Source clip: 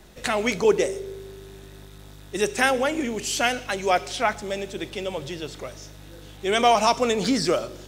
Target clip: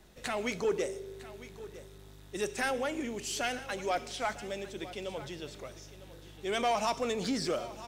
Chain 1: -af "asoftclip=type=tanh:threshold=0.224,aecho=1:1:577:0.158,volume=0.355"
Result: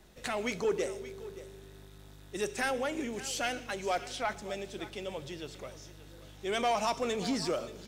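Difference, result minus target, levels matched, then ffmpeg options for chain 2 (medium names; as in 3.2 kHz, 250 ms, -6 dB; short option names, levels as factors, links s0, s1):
echo 377 ms early
-af "asoftclip=type=tanh:threshold=0.224,aecho=1:1:954:0.158,volume=0.355"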